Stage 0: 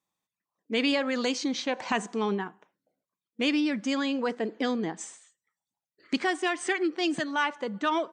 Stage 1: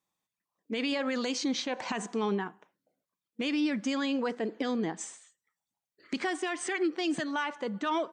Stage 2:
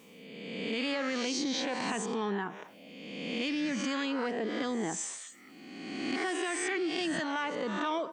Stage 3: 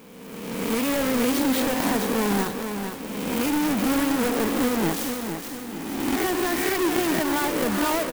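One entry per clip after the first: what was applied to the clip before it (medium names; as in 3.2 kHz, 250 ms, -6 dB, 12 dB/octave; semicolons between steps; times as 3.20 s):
peak limiter -21.5 dBFS, peak gain reduction 9 dB
reverse spectral sustain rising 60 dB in 0.85 s; level flattener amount 50%; trim -5.5 dB
square wave that keeps the level; feedback delay 456 ms, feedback 43%, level -7 dB; sampling jitter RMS 0.048 ms; trim +4 dB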